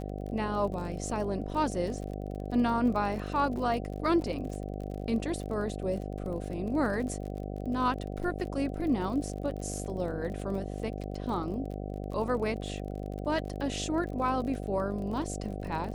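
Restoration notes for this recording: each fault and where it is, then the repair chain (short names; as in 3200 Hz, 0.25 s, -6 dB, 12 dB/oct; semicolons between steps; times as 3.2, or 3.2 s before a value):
buzz 50 Hz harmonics 15 -37 dBFS
crackle 35/s -38 dBFS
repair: de-click; de-hum 50 Hz, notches 15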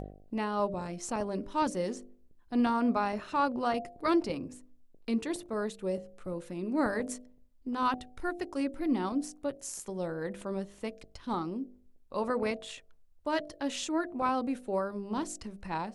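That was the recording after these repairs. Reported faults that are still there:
none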